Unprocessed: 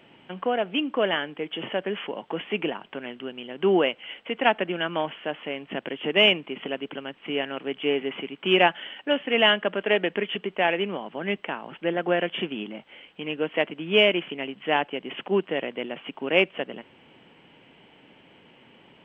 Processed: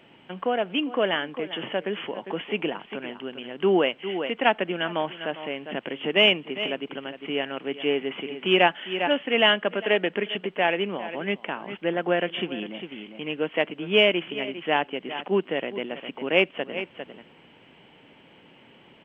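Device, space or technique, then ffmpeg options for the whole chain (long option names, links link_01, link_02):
ducked delay: -filter_complex "[0:a]asplit=3[link_01][link_02][link_03];[link_02]adelay=402,volume=-7dB[link_04];[link_03]apad=whole_len=857764[link_05];[link_04][link_05]sidechaincompress=threshold=-37dB:ratio=8:attack=12:release=184[link_06];[link_01][link_06]amix=inputs=2:normalize=0"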